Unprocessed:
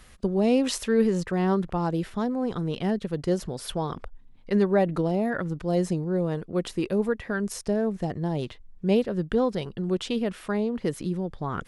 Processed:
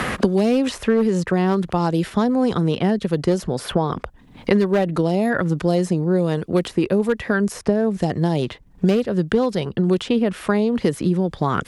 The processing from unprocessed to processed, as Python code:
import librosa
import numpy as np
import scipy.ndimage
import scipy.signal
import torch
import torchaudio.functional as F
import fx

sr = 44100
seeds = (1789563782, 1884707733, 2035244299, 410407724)

y = scipy.signal.sosfilt(scipy.signal.butter(2, 44.0, 'highpass', fs=sr, output='sos'), x)
y = fx.clip_asym(y, sr, top_db=-18.5, bottom_db=-14.5)
y = fx.band_squash(y, sr, depth_pct=100)
y = F.gain(torch.from_numpy(y), 6.0).numpy()